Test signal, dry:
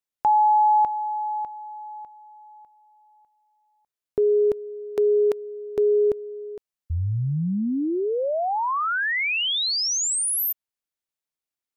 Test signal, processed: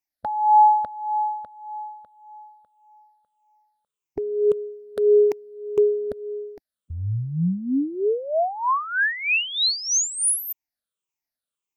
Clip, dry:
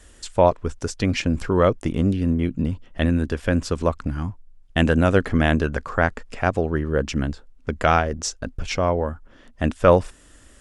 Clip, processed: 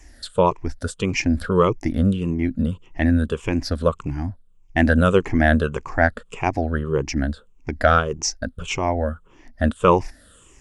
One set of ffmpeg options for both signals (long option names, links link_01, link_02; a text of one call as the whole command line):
ffmpeg -i in.wav -af "afftfilt=real='re*pow(10,15/40*sin(2*PI*(0.72*log(max(b,1)*sr/1024/100)/log(2)-(-1.7)*(pts-256)/sr)))':imag='im*pow(10,15/40*sin(2*PI*(0.72*log(max(b,1)*sr/1024/100)/log(2)-(-1.7)*(pts-256)/sr)))':win_size=1024:overlap=0.75,volume=-2dB" out.wav